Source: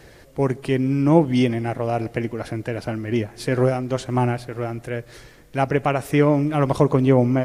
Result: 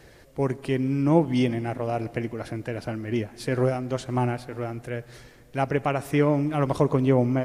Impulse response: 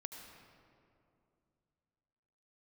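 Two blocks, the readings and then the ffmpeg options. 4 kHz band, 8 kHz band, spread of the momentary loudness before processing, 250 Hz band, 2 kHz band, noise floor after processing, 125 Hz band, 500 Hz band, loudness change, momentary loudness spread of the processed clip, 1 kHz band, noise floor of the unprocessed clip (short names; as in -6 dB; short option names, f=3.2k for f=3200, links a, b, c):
-4.5 dB, -4.5 dB, 12 LU, -4.5 dB, -4.5 dB, -52 dBFS, -4.5 dB, -4.5 dB, -4.5 dB, 12 LU, -4.5 dB, -48 dBFS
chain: -filter_complex "[0:a]asplit=2[a][b];[1:a]atrim=start_sample=2205[c];[b][c]afir=irnorm=-1:irlink=0,volume=-12dB[d];[a][d]amix=inputs=2:normalize=0,volume=-5.5dB"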